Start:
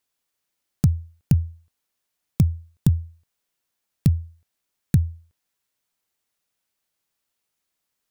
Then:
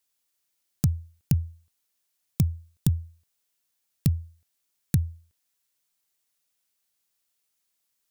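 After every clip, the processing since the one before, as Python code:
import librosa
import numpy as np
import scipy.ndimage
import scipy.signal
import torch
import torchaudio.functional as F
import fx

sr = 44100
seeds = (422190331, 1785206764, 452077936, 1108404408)

y = fx.high_shelf(x, sr, hz=3000.0, db=9.0)
y = y * 10.0 ** (-5.0 / 20.0)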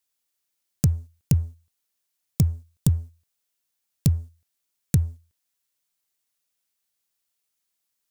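y = fx.leveller(x, sr, passes=1)
y = fx.dynamic_eq(y, sr, hz=7300.0, q=1.1, threshold_db=-58.0, ratio=4.0, max_db=7)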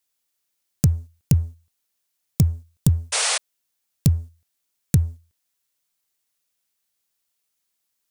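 y = fx.spec_paint(x, sr, seeds[0], shape='noise', start_s=3.12, length_s=0.26, low_hz=420.0, high_hz=10000.0, level_db=-24.0)
y = y * 10.0 ** (2.5 / 20.0)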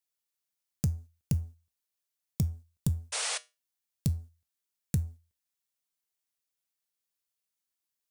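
y = fx.comb_fb(x, sr, f0_hz=68.0, decay_s=0.25, harmonics='odd', damping=0.0, mix_pct=50)
y = y * 10.0 ** (-6.5 / 20.0)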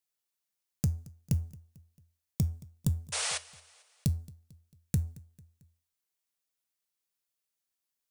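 y = fx.echo_feedback(x, sr, ms=223, feedback_pct=49, wet_db=-22)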